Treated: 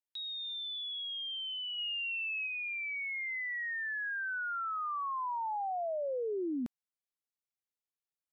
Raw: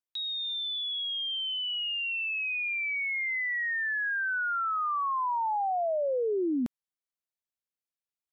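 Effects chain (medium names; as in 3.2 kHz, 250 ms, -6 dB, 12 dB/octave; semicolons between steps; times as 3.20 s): 1.78–2.47 s: tilt EQ +1.5 dB/octave; trim -6.5 dB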